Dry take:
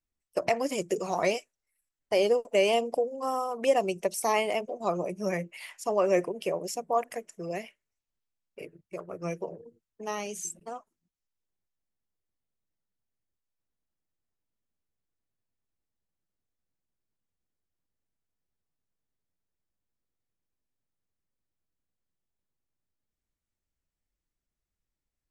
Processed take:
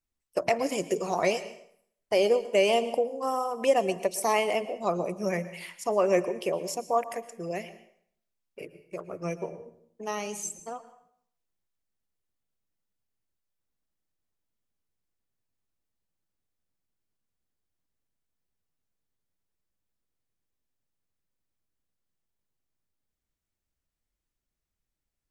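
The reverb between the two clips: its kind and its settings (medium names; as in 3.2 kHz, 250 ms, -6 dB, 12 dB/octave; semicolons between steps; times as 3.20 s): plate-style reverb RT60 0.64 s, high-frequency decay 0.85×, pre-delay 100 ms, DRR 14 dB; trim +1 dB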